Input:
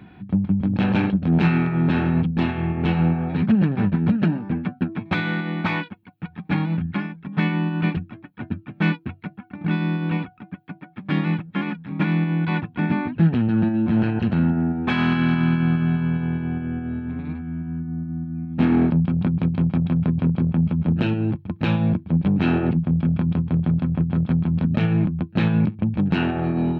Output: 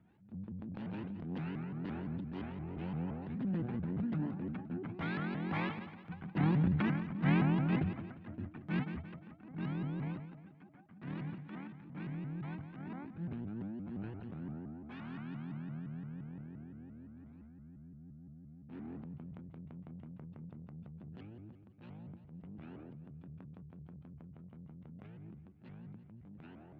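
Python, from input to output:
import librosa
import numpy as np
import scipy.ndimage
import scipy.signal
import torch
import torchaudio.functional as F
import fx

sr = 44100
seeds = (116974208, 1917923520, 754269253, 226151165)

y = fx.doppler_pass(x, sr, speed_mps=8, closest_m=7.4, pass_at_s=6.89)
y = fx.high_shelf(y, sr, hz=2100.0, db=-8.5)
y = fx.echo_feedback(y, sr, ms=174, feedback_pct=43, wet_db=-16)
y = fx.transient(y, sr, attack_db=-7, sustain_db=6)
y = fx.vibrato_shape(y, sr, shape='saw_up', rate_hz=5.8, depth_cents=250.0)
y = y * 10.0 ** (-5.5 / 20.0)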